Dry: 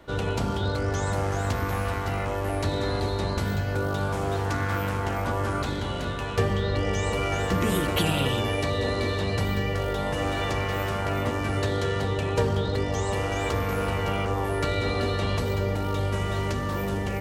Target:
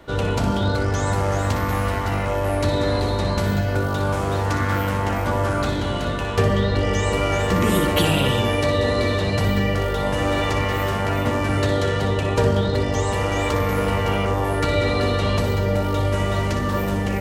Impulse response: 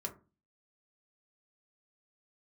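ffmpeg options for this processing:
-filter_complex "[0:a]asplit=2[a][b];[1:a]atrim=start_sample=2205,asetrate=70560,aresample=44100,adelay=60[c];[b][c]afir=irnorm=-1:irlink=0,volume=-2.5dB[d];[a][d]amix=inputs=2:normalize=0,volume=4.5dB"

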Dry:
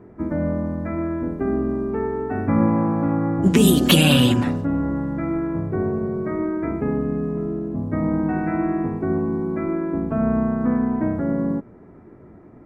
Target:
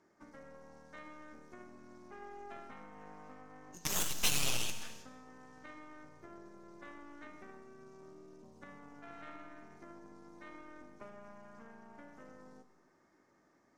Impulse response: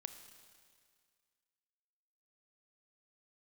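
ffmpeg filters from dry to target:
-filter_complex "[0:a]acompressor=threshold=-26dB:ratio=6,bandpass=f=6.4k:t=q:w=3:csg=0,aeval=exprs='0.0335*(cos(1*acos(clip(val(0)/0.0335,-1,1)))-cos(1*PI/2))+0.0106*(cos(8*acos(clip(val(0)/0.0335,-1,1)))-cos(8*PI/2))':c=same[a];[1:a]atrim=start_sample=2205,afade=t=out:st=0.35:d=0.01,atrim=end_sample=15876[b];[a][b]afir=irnorm=-1:irlink=0,asetrate=40517,aresample=44100,volume=14dB"

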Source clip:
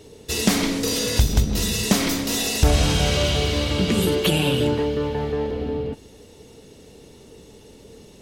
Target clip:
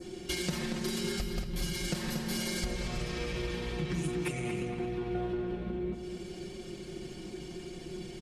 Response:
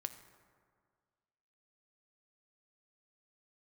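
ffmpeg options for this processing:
-filter_complex "[0:a]adynamicequalizer=threshold=0.01:dfrequency=3700:dqfactor=1.7:tfrequency=3700:tqfactor=1.7:attack=5:release=100:ratio=0.375:range=2.5:mode=cutabove:tftype=bell,acompressor=threshold=-35dB:ratio=6,asetrate=36028,aresample=44100,atempo=1.22405,aecho=1:1:5.6:0.65,asplit=2[a][b];[b]adelay=232,lowpass=f=3.7k:p=1,volume=-6dB,asplit=2[c][d];[d]adelay=232,lowpass=f=3.7k:p=1,volume=0.48,asplit=2[e][f];[f]adelay=232,lowpass=f=3.7k:p=1,volume=0.48,asplit=2[g][h];[h]adelay=232,lowpass=f=3.7k:p=1,volume=0.48,asplit=2[i][j];[j]adelay=232,lowpass=f=3.7k:p=1,volume=0.48,asplit=2[k][l];[l]adelay=232,lowpass=f=3.7k:p=1,volume=0.48[m];[a][c][e][g][i][k][m]amix=inputs=7:normalize=0"

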